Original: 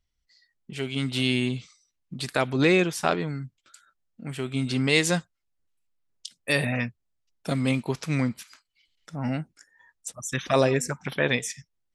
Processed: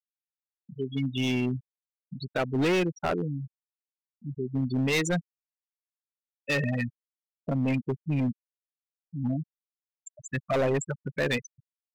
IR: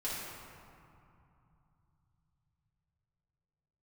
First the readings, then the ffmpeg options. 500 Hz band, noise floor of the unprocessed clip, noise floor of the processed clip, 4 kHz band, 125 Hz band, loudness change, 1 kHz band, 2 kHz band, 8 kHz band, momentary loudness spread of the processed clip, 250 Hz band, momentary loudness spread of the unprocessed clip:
−3.5 dB, −78 dBFS, below −85 dBFS, −7.0 dB, −1.5 dB, −3.0 dB, −4.5 dB, −5.0 dB, −8.0 dB, 16 LU, −2.0 dB, 19 LU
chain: -af "afftfilt=real='re*gte(hypot(re,im),0.112)':imag='im*gte(hypot(re,im),0.112)':win_size=1024:overlap=0.75,volume=21.5dB,asoftclip=hard,volume=-21.5dB"

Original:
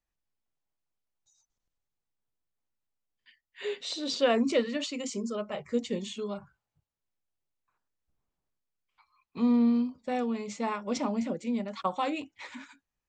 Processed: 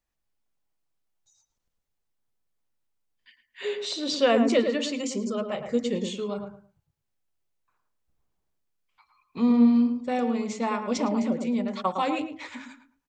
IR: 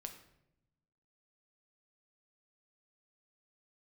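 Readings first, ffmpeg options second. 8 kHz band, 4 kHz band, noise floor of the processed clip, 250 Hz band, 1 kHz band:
+3.5 dB, +3.5 dB, −81 dBFS, +5.0 dB, +4.5 dB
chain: -filter_complex "[0:a]asplit=2[link_01][link_02];[link_02]adelay=109,lowpass=frequency=1200:poles=1,volume=-5dB,asplit=2[link_03][link_04];[link_04]adelay=109,lowpass=frequency=1200:poles=1,volume=0.26,asplit=2[link_05][link_06];[link_06]adelay=109,lowpass=frequency=1200:poles=1,volume=0.26[link_07];[link_01][link_03][link_05][link_07]amix=inputs=4:normalize=0,volume=3.5dB"

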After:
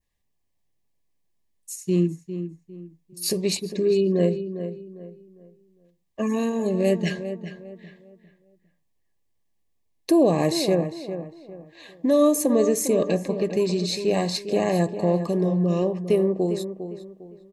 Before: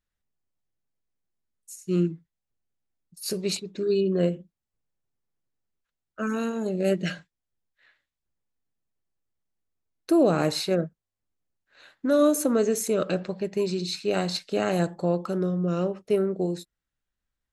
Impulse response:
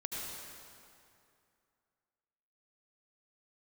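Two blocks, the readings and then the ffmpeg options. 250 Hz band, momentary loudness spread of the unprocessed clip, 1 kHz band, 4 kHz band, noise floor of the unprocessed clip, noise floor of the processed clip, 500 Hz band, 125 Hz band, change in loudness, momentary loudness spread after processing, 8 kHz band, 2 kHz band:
+3.5 dB, 12 LU, +2.0 dB, +2.0 dB, below −85 dBFS, −71 dBFS, +3.5 dB, +3.5 dB, +2.5 dB, 20 LU, +4.0 dB, −0.5 dB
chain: -filter_complex "[0:a]adynamicequalizer=threshold=0.00355:dfrequency=3300:dqfactor=1.6:tfrequency=3300:tqfactor=1.6:attack=5:release=100:ratio=0.375:range=3.5:mode=cutabove:tftype=bell,asplit=2[link_01][link_02];[link_02]acompressor=threshold=-31dB:ratio=6,volume=2dB[link_03];[link_01][link_03]amix=inputs=2:normalize=0,asuperstop=centerf=1400:order=20:qfactor=3.5,asplit=2[link_04][link_05];[link_05]adelay=403,lowpass=frequency=2200:poles=1,volume=-10dB,asplit=2[link_06][link_07];[link_07]adelay=403,lowpass=frequency=2200:poles=1,volume=0.33,asplit=2[link_08][link_09];[link_09]adelay=403,lowpass=frequency=2200:poles=1,volume=0.33,asplit=2[link_10][link_11];[link_11]adelay=403,lowpass=frequency=2200:poles=1,volume=0.33[link_12];[link_04][link_06][link_08][link_10][link_12]amix=inputs=5:normalize=0"

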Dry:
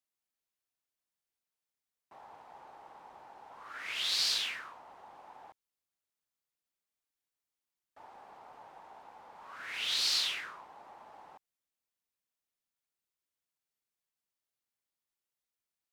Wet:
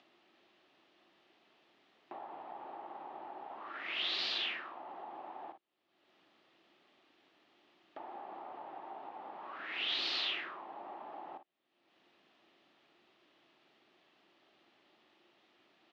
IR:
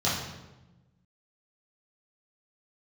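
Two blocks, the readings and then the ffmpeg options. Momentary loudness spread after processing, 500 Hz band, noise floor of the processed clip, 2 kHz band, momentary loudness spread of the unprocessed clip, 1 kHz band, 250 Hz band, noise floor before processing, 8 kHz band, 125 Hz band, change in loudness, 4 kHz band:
16 LU, +6.5 dB, −75 dBFS, −0.5 dB, 21 LU, +4.5 dB, +9.5 dB, below −85 dBFS, −22.0 dB, can't be measured, −8.5 dB, −4.0 dB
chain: -filter_complex "[0:a]tiltshelf=frequency=1300:gain=3,asplit=2[link_01][link_02];[link_02]aecho=0:1:40|54:0.237|0.2[link_03];[link_01][link_03]amix=inputs=2:normalize=0,acompressor=mode=upward:threshold=-42dB:ratio=2.5,highpass=290,equalizer=frequency=340:width_type=q:width=4:gain=7,equalizer=frequency=480:width_type=q:width=4:gain=-8,equalizer=frequency=980:width_type=q:width=4:gain=-6,equalizer=frequency=1500:width_type=q:width=4:gain=-7,equalizer=frequency=2200:width_type=q:width=4:gain=-5,lowpass=frequency=3300:width=0.5412,lowpass=frequency=3300:width=1.3066,volume=4.5dB"

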